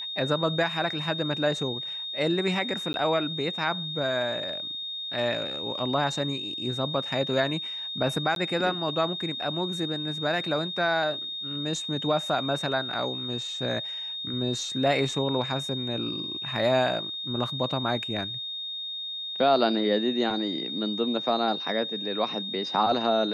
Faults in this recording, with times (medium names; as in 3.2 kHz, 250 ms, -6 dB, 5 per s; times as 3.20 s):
whine 3.7 kHz -32 dBFS
2.93–2.94 s: dropout 11 ms
8.35–8.36 s: dropout 12 ms